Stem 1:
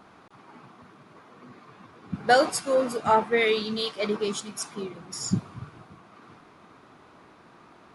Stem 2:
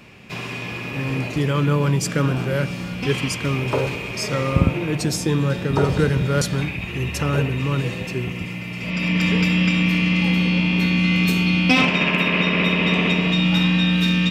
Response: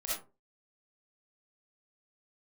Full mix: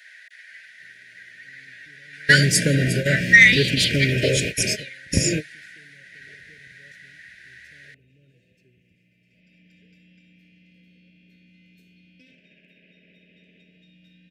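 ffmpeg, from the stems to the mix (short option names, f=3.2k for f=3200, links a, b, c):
-filter_complex "[0:a]highpass=f=1.2k:w=0.5412,highpass=f=1.2k:w=1.3066,equalizer=f=1.9k:w=5.3:g=14.5,volume=2.5dB,asplit=2[a][b];[1:a]acompressor=threshold=-26dB:ratio=1.5,adelay=500,volume=-2.5dB[c];[b]apad=whole_len=652903[d];[c][d]sidechaingate=range=-38dB:threshold=-39dB:ratio=16:detection=peak[e];[a][e]amix=inputs=2:normalize=0,asuperstop=centerf=1000:order=20:qfactor=1.2,acontrast=80"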